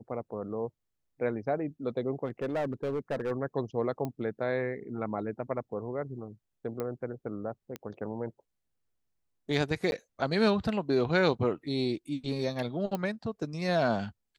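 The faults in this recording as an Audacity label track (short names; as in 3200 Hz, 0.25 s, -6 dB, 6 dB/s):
2.250000	3.320000	clipped -27 dBFS
4.050000	4.050000	pop -22 dBFS
6.800000	6.800000	pop -21 dBFS
7.760000	7.760000	pop -23 dBFS
9.910000	9.920000	gap
12.950000	12.950000	pop -19 dBFS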